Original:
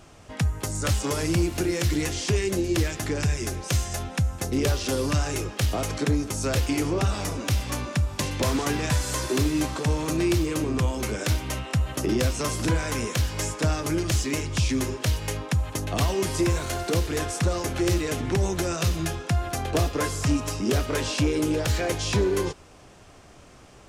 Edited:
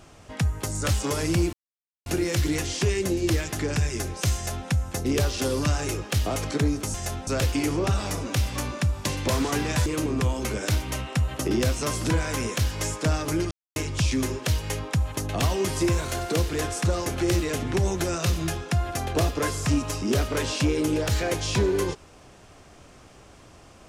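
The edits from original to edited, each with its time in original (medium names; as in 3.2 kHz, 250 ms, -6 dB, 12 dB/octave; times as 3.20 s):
1.53 s: insert silence 0.53 s
3.82–4.15 s: copy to 6.41 s
9.00–10.44 s: delete
14.09–14.34 s: mute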